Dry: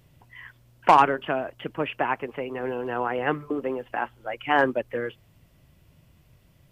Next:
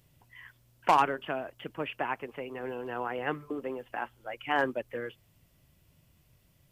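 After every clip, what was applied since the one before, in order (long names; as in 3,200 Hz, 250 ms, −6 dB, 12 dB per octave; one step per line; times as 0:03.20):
high-shelf EQ 4,100 Hz +8 dB
level −7.5 dB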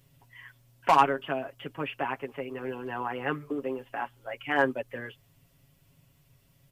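comb filter 7.3 ms, depth 73%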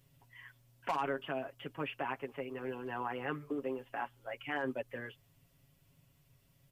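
brickwall limiter −20 dBFS, peak gain reduction 11 dB
level −5 dB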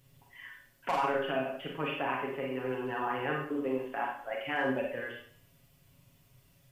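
four-comb reverb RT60 0.54 s, combs from 31 ms, DRR −1 dB
level +2.5 dB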